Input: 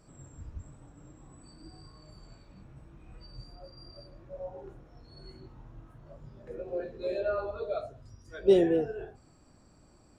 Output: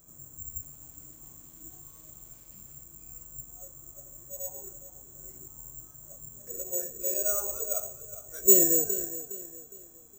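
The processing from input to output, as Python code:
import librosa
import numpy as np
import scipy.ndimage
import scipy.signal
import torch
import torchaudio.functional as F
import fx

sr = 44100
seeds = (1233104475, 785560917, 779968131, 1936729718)

y = fx.crossing_spikes(x, sr, level_db=-42.5, at=(0.5, 2.84))
y = y + 10.0 ** (-61.0 / 20.0) * np.sin(2.0 * np.pi * 4000.0 * np.arange(len(y)) / sr)
y = fx.echo_feedback(y, sr, ms=412, feedback_pct=37, wet_db=-13.5)
y = (np.kron(scipy.signal.resample_poly(y, 1, 6), np.eye(6)[0]) * 6)[:len(y)]
y = F.gain(torch.from_numpy(y), -5.5).numpy()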